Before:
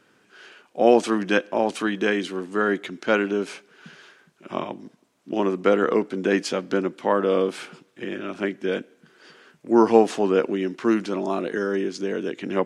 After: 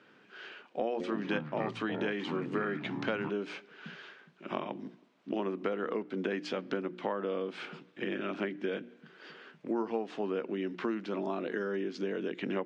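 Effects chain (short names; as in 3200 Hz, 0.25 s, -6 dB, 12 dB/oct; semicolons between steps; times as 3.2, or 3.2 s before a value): Chebyshev band-pass 150–3300 Hz, order 2; notches 60/120/180/240/300/360 Hz; compressor 6:1, threshold -31 dBFS, peak gain reduction 19.5 dB; 0.86–3.3 echoes that change speed 0.138 s, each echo -5 st, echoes 2, each echo -6 dB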